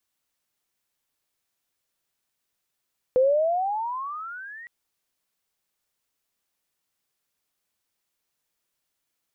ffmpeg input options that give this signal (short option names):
-f lavfi -i "aevalsrc='pow(10,(-15-24*t/1.51)/20)*sin(2*PI*499*1.51/(23.5*log(2)/12)*(exp(23.5*log(2)/12*t/1.51)-1))':d=1.51:s=44100"